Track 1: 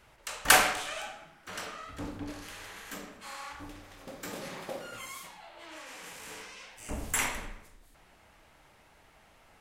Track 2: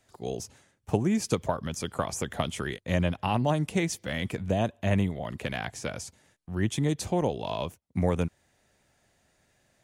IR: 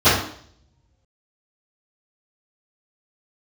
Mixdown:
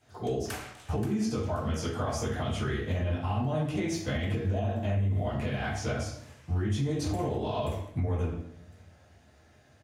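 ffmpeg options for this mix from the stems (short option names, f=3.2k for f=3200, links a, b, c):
-filter_complex "[0:a]volume=-16.5dB,asplit=2[a][b];[b]volume=-4.5dB[c];[1:a]alimiter=limit=-21dB:level=0:latency=1:release=25,volume=-5dB,asplit=2[d][e];[e]volume=-13.5dB[f];[2:a]atrim=start_sample=2205[g];[f][g]afir=irnorm=-1:irlink=0[h];[c]aecho=0:1:529|1058|1587|2116:1|0.22|0.0484|0.0106[i];[a][d][h][i]amix=inputs=4:normalize=0,alimiter=limit=-21.5dB:level=0:latency=1:release=314"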